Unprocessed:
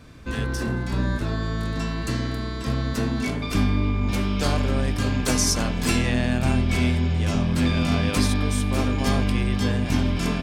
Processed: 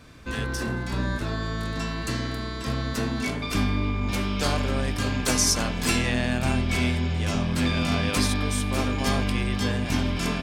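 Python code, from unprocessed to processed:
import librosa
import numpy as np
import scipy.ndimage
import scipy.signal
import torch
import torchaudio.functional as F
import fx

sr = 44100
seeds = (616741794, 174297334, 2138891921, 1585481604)

y = fx.low_shelf(x, sr, hz=500.0, db=-5.0)
y = F.gain(torch.from_numpy(y), 1.0).numpy()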